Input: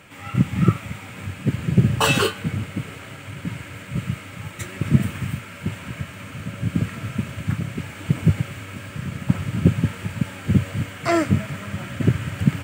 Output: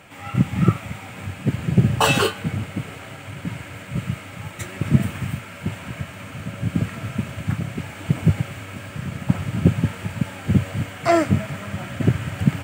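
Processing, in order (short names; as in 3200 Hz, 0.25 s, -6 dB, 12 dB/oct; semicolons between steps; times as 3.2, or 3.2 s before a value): bell 740 Hz +6.5 dB 0.54 oct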